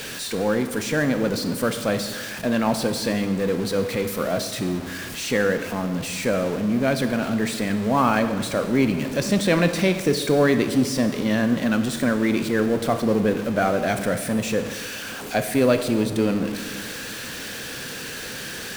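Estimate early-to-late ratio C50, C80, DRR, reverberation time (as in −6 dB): 10.0 dB, 11.0 dB, 8.5 dB, 1.6 s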